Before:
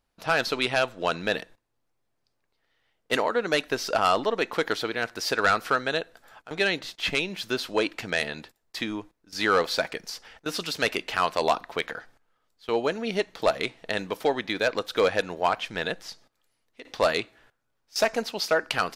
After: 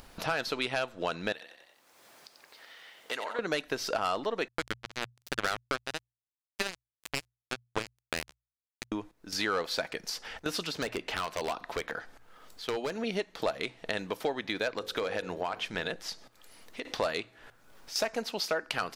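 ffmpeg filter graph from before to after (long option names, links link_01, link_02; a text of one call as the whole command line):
ffmpeg -i in.wav -filter_complex "[0:a]asettb=1/sr,asplit=3[link_01][link_02][link_03];[link_01]atrim=end=1.324[link_04];[link_02]atrim=start=1.32:end=3.39,asetpts=PTS-STARTPTS,afade=type=in:duration=0.004:curve=qsin,afade=type=out:start_time=2.066:duration=0.004:curve=qsin,highpass=frequency=870:poles=1,acompressor=threshold=-48dB:ratio=1.5:attack=3.2:release=140:knee=1:detection=peak,asplit=5[link_05][link_06][link_07][link_08][link_09];[link_06]adelay=90,afreqshift=32,volume=-8dB[link_10];[link_07]adelay=180,afreqshift=64,volume=-18.5dB[link_11];[link_08]adelay=270,afreqshift=96,volume=-28.9dB[link_12];[link_09]adelay=360,afreqshift=128,volume=-39.4dB[link_13];[link_05][link_10][link_11][link_12][link_13]amix=inputs=5:normalize=0,atrim=end_sample=91287[link_14];[link_03]atrim=start=3.386[link_15];[link_04][link_14]acrossfade=duration=0.004:curve1=hsin:curve2=qsin[link_16];[link_16][link_15]acrossfade=duration=0.004:curve1=qsin:curve2=hsin,asettb=1/sr,asplit=3[link_17][link_18][link_19];[link_17]atrim=end=4.484[link_20];[link_18]atrim=start=4.48:end=8.92,asetpts=PTS-STARTPTS,afade=type=in:duration=0.004:curve=qsin,afade=type=out:start_time=4.436:duration=0.004:curve=qsin,equalizer=frequency=3400:width=5.5:gain=-14.5,acrusher=bits=2:mix=0:aa=0.5[link_21];[link_19]atrim=start=8.916[link_22];[link_20][link_21]acrossfade=duration=0.004:curve1=hsin:curve2=qsin[link_23];[link_23][link_22]acrossfade=duration=0.004:curve1=qsin:curve2=hsin,asettb=1/sr,asplit=3[link_24][link_25][link_26];[link_24]atrim=end=10.644[link_27];[link_25]atrim=start=10.64:end=13.04,asetpts=PTS-STARTPTS,afade=type=in:duration=0.004:curve=qsin,afade=type=out:start_time=2.396:duration=0.004:curve=qsin,acrossover=split=1600|7600[link_28][link_29][link_30];[link_28]acompressor=threshold=-26dB:ratio=4[link_31];[link_29]acompressor=threshold=-35dB:ratio=4[link_32];[link_30]acompressor=threshold=-57dB:ratio=4[link_33];[link_31][link_32][link_33]amix=inputs=3:normalize=0,aeval=exprs='0.0794*(abs(mod(val(0)/0.0794+3,4)-2)-1)':channel_layout=same[link_34];[link_26]atrim=start=13.036[link_35];[link_27][link_34]acrossfade=duration=0.004:curve1=hsin:curve2=qsin[link_36];[link_36][link_35]acrossfade=duration=0.004:curve1=qsin:curve2=hsin,asettb=1/sr,asplit=3[link_37][link_38][link_39];[link_37]atrim=end=14.744[link_40];[link_38]atrim=start=14.74:end=15.96,asetpts=PTS-STARTPTS,afade=type=in:duration=0.004:curve=qsin,afade=type=out:start_time=1.216:duration=0.004:curve=qsin,bandreject=frequency=48.3:width_type=h:width=4,bandreject=frequency=96.6:width_type=h:width=4,bandreject=frequency=144.9:width_type=h:width=4,bandreject=frequency=193.2:width_type=h:width=4,bandreject=frequency=241.5:width_type=h:width=4,bandreject=frequency=289.8:width_type=h:width=4,bandreject=frequency=338.1:width_type=h:width=4,bandreject=frequency=386.4:width_type=h:width=4,bandreject=frequency=434.7:width_type=h:width=4,bandreject=frequency=483:width_type=h:width=4,bandreject=frequency=531.3:width_type=h:width=4,acompressor=threshold=-23dB:ratio=6:attack=3.2:release=140:knee=1:detection=peak[link_41];[link_39]atrim=start=15.956[link_42];[link_40][link_41]acrossfade=duration=0.004:curve1=hsin:curve2=qsin[link_43];[link_43][link_42]acrossfade=duration=0.004:curve1=qsin:curve2=hsin,acompressor=threshold=-43dB:ratio=2.5,bandreject=frequency=60:width_type=h:width=6,bandreject=frequency=120:width_type=h:width=6,acompressor=mode=upward:threshold=-46dB:ratio=2.5,volume=7.5dB" out.wav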